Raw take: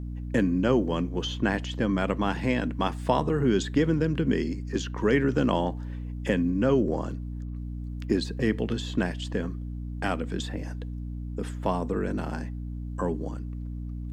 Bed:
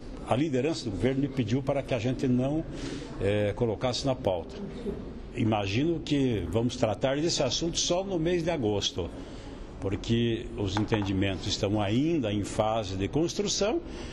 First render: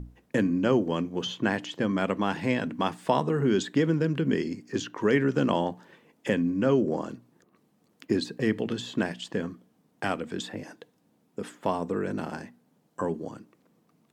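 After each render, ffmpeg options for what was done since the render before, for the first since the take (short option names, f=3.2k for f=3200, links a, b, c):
-af "bandreject=f=60:t=h:w=6,bandreject=f=120:t=h:w=6,bandreject=f=180:t=h:w=6,bandreject=f=240:t=h:w=6,bandreject=f=300:t=h:w=6"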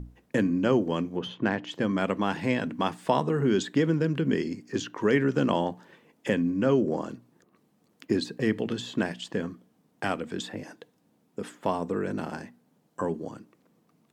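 -filter_complex "[0:a]asplit=3[a][b][c];[a]afade=t=out:st=1.16:d=0.02[d];[b]adynamicsmooth=sensitivity=1:basefreq=2.7k,afade=t=in:st=1.16:d=0.02,afade=t=out:st=1.66:d=0.02[e];[c]afade=t=in:st=1.66:d=0.02[f];[d][e][f]amix=inputs=3:normalize=0"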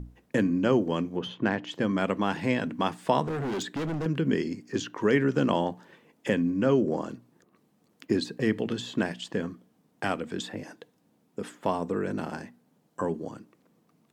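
-filter_complex "[0:a]asettb=1/sr,asplit=3[a][b][c];[a]atrim=end=3.244[d];[b]atrim=start=3.24:end=4.06,asetpts=PTS-STARTPTS,afade=t=in:d=0.004:c=qsin,afade=t=out:st=0.816:d=0.004:c=qsin,volume=28.5dB,asoftclip=hard,volume=-28.5dB[e];[c]atrim=start=4.056[f];[d][e]acrossfade=d=0.004:c1=hsin:c2=qsin[g];[g][f]acrossfade=d=0.004:c1=qsin:c2=hsin"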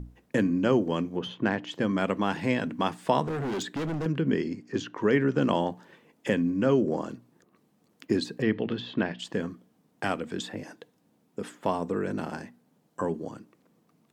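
-filter_complex "[0:a]asettb=1/sr,asplit=3[a][b][c];[a]atrim=end=4.124[d];[b]atrim=start=4.12:end=5.42,asetpts=PTS-STARTPTS,afade=t=in:d=0.004:c=qsin,afade=t=out:st=1.296:d=0.004:c=qsin,lowpass=f=3.8k:p=1[e];[c]atrim=start=5.416[f];[d][e]acrossfade=d=0.004:c1=hsin:c2=qsin[g];[g][f]acrossfade=d=0.004:c1=qsin:c2=hsin,asettb=1/sr,asplit=3[h][i][j];[h]atrim=end=8.424[k];[i]atrim=start=8.42:end=9.19,asetpts=PTS-STARTPTS,afade=t=in:d=0.004:c=qsin,afade=t=out:st=0.766:d=0.004:c=qsin,lowpass=f=4.1k:w=0.5412,lowpass=f=4.1k:w=1.3066[l];[j]atrim=start=9.186[m];[k][l]acrossfade=d=0.004:c1=hsin:c2=qsin[n];[n][m]acrossfade=d=0.004:c1=qsin:c2=hsin"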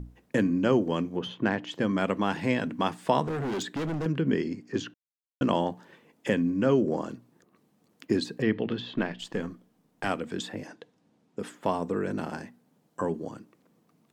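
-filter_complex "[0:a]asettb=1/sr,asplit=3[a][b][c];[a]atrim=end=8.944[d];[b]atrim=start=8.94:end=10.07,asetpts=PTS-STARTPTS,afade=t=in:d=0.004:c=qsin,afade=t=out:st=1.126:d=0.004:c=qsin,aeval=exprs='if(lt(val(0),0),0.708*val(0),val(0))':c=same[e];[c]atrim=start=10.066[f];[d][e]acrossfade=d=0.004:c1=hsin:c2=qsin[g];[g][f]acrossfade=d=0.004:c1=qsin:c2=hsin,asettb=1/sr,asplit=3[h][i][j];[h]atrim=end=10.674[k];[i]atrim=start=10.67:end=11.39,asetpts=PTS-STARTPTS,afade=t=in:d=0.004:c=qsin,afade=t=out:st=0.716:d=0.004:c=qsin,lowpass=6.8k[l];[j]atrim=start=11.386[m];[k][l]acrossfade=d=0.004:c1=hsin:c2=qsin[n];[n][m]acrossfade=d=0.004:c1=qsin:c2=hsin,asplit=3[o][p][q];[o]atrim=end=4.94,asetpts=PTS-STARTPTS,afade=t=out:st=4.936:d=0.004:c=hsin[r];[p]atrim=start=4.94:end=5.41,asetpts=PTS-STARTPTS,volume=0[s];[q]atrim=start=5.41,asetpts=PTS-STARTPTS,afade=t=in:d=0.004:c=hsin[t];[r][s][t]concat=n=3:v=0:a=1"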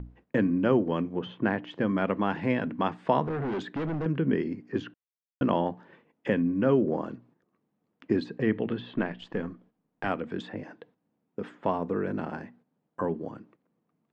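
-af "agate=range=-10dB:threshold=-57dB:ratio=16:detection=peak,lowpass=2.4k"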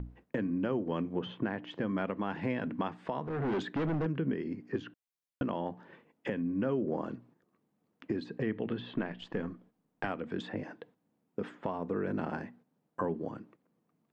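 -af "acompressor=threshold=-29dB:ratio=2,alimiter=limit=-21.5dB:level=0:latency=1:release=403"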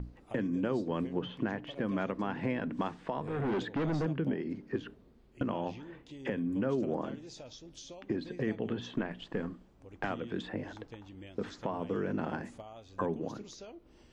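-filter_complex "[1:a]volume=-21.5dB[a];[0:a][a]amix=inputs=2:normalize=0"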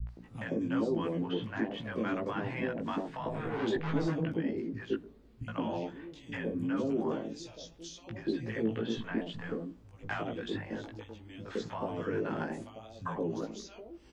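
-filter_complex "[0:a]asplit=2[a][b];[b]adelay=18,volume=-2dB[c];[a][c]amix=inputs=2:normalize=0,acrossover=split=170|710[d][e][f];[f]adelay=70[g];[e]adelay=170[h];[d][h][g]amix=inputs=3:normalize=0"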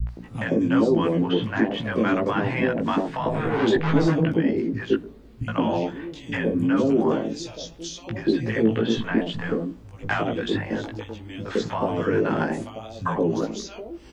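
-af "volume=11.5dB"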